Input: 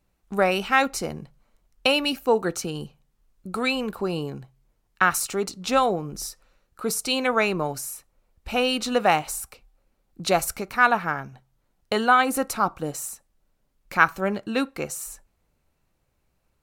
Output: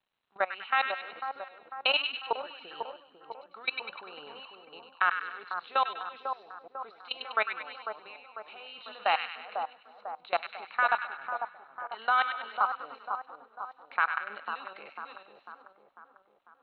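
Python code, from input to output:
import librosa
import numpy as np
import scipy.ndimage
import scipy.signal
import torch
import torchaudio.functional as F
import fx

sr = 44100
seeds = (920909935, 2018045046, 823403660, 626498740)

p1 = fx.reverse_delay(x, sr, ms=371, wet_db=-9.0)
p2 = scipy.signal.sosfilt(scipy.signal.butter(2, 790.0, 'highpass', fs=sr, output='sos'), p1)
p3 = fx.level_steps(p2, sr, step_db=23)
p4 = fx.dmg_crackle(p3, sr, seeds[0], per_s=390.0, level_db=-63.0)
p5 = scipy.signal.sosfilt(scipy.signal.cheby1(6, 3, 4100.0, 'lowpass', fs=sr, output='sos'), p4)
y = p5 + fx.echo_split(p5, sr, split_hz=1300.0, low_ms=497, high_ms=99, feedback_pct=52, wet_db=-6, dry=0)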